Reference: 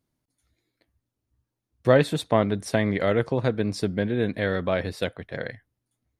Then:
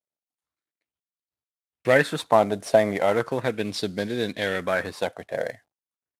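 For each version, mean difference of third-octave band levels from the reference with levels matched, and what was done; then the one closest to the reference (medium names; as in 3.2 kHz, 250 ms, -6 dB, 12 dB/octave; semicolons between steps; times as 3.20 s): 5.5 dB: CVSD coder 64 kbps; gate with hold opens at -43 dBFS; high-pass 250 Hz 6 dB/octave; sweeping bell 0.37 Hz 620–4500 Hz +11 dB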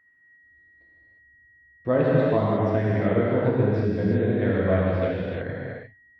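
8.0 dB: level rider gain up to 5.5 dB; whistle 1.9 kHz -44 dBFS; tape spacing loss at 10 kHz 42 dB; gated-style reverb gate 380 ms flat, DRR -6.5 dB; trim -7 dB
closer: first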